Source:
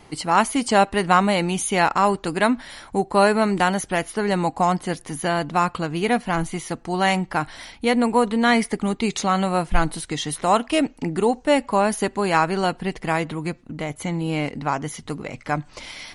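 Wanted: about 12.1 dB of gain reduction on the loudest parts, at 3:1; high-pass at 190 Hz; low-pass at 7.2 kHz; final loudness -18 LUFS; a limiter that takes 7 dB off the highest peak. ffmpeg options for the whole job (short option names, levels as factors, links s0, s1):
-af "highpass=190,lowpass=7200,acompressor=threshold=0.0355:ratio=3,volume=5.62,alimiter=limit=0.501:level=0:latency=1"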